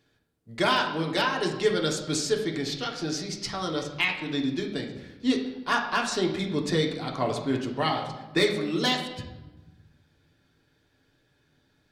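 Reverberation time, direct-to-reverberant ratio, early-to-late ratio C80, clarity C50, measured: 1.1 s, 0.0 dB, 9.0 dB, 6.5 dB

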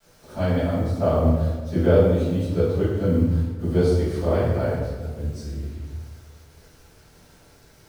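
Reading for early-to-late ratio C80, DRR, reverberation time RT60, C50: 2.0 dB, −14.0 dB, 1.3 s, −1.0 dB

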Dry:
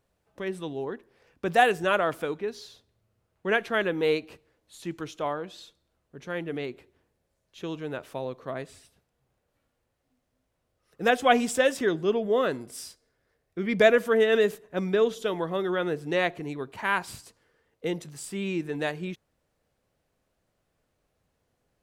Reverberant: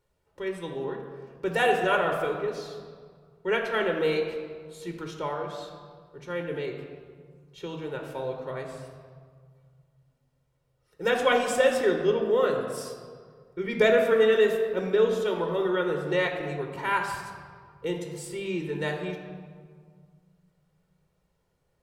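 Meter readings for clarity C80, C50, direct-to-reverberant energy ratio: 6.5 dB, 5.0 dB, 2.5 dB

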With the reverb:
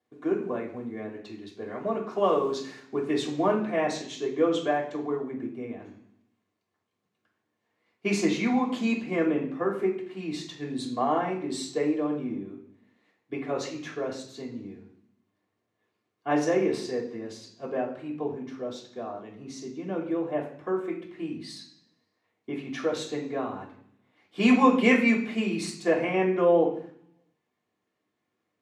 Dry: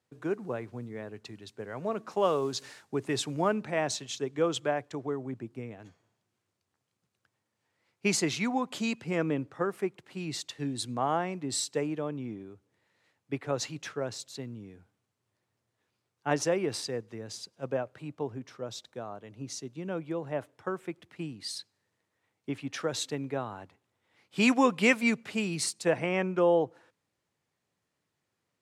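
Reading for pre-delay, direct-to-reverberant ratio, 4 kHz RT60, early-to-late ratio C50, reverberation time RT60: 3 ms, −6.0 dB, 0.80 s, 7.0 dB, 0.60 s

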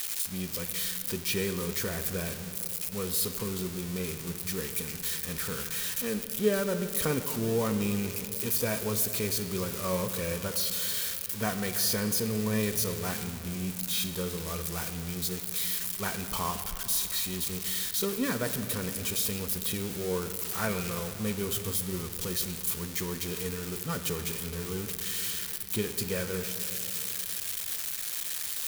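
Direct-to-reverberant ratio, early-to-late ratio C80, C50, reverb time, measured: 8.0 dB, 10.5 dB, 9.5 dB, 3.0 s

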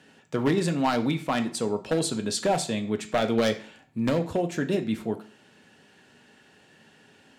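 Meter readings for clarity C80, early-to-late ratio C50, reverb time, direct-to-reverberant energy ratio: 18.0 dB, 14.0 dB, 0.50 s, 6.0 dB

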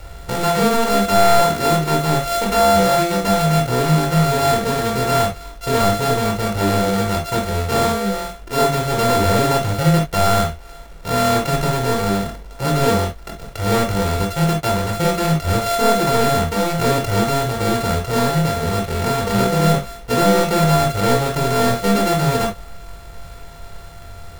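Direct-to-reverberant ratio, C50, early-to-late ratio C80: 1.5 dB, 9.0 dB, 60.0 dB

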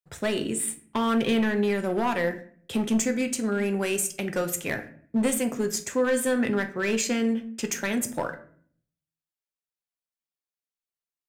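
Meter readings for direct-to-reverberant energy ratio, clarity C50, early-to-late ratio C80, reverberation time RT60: 7.5 dB, 13.5 dB, 17.5 dB, 0.55 s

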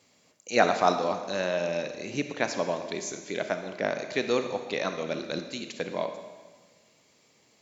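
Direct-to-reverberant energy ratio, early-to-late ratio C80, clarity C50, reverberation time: 7.0 dB, 9.5 dB, 8.0 dB, 1.4 s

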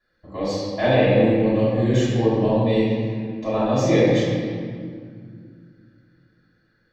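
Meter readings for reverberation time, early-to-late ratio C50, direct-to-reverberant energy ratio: 2.1 s, −3.0 dB, −13.5 dB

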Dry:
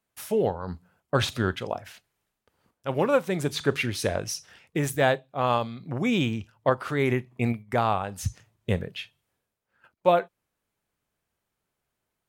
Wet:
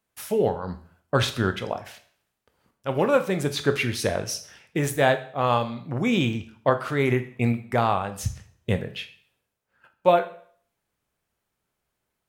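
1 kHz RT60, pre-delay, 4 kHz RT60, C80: 0.55 s, 14 ms, 0.50 s, 17.5 dB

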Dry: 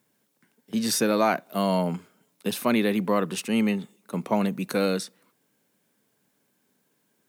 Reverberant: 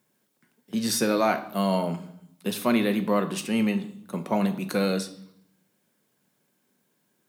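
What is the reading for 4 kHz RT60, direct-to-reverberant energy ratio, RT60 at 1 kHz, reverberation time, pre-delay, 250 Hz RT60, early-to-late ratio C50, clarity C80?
0.70 s, 7.5 dB, 0.65 s, 0.70 s, 5 ms, 1.0 s, 13.5 dB, 16.5 dB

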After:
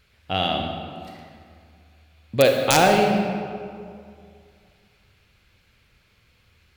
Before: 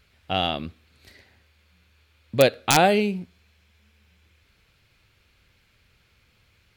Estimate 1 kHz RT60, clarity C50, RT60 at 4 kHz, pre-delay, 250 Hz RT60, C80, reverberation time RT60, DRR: 2.2 s, 3.5 dB, 1.3 s, 34 ms, 2.3 s, 5.0 dB, 2.3 s, 2.5 dB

